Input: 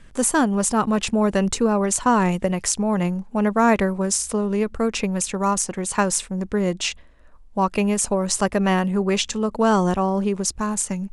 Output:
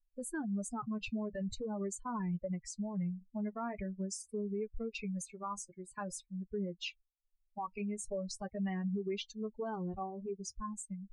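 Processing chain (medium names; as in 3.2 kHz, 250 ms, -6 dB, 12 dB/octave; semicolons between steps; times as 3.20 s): expander on every frequency bin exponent 3; low-pass 1.9 kHz 6 dB/octave, from 4.02 s 4 kHz, from 5.45 s 2.3 kHz; compression, threshold -26 dBFS, peak gain reduction 9.5 dB; peak limiter -28.5 dBFS, peak gain reduction 11.5 dB; flange 0.45 Hz, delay 4.4 ms, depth 3.8 ms, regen -49%; trim +1.5 dB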